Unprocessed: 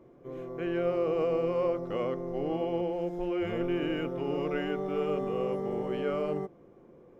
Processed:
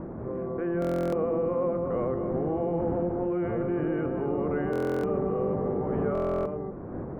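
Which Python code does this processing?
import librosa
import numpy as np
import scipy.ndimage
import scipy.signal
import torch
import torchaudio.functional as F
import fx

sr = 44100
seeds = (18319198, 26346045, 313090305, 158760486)

y = fx.octave_divider(x, sr, octaves=1, level_db=-1.0)
y = fx.dmg_wind(y, sr, seeds[0], corner_hz=300.0, level_db=-40.0)
y = scipy.signal.sosfilt(scipy.signal.butter(4, 1600.0, 'lowpass', fs=sr, output='sos'), y)
y = fx.low_shelf(y, sr, hz=71.0, db=-12.0)
y = y + 10.0 ** (-9.5 / 20.0) * np.pad(y, (int(239 * sr / 1000.0), 0))[:len(y)]
y = fx.buffer_glitch(y, sr, at_s=(0.8, 4.71, 6.13), block=1024, repeats=13)
y = fx.env_flatten(y, sr, amount_pct=50)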